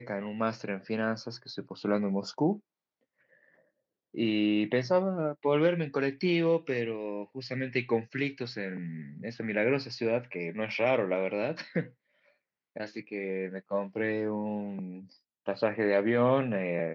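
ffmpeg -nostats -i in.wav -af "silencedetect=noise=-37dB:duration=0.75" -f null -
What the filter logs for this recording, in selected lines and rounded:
silence_start: 2.56
silence_end: 4.15 | silence_duration: 1.59
silence_start: 11.85
silence_end: 12.76 | silence_duration: 0.92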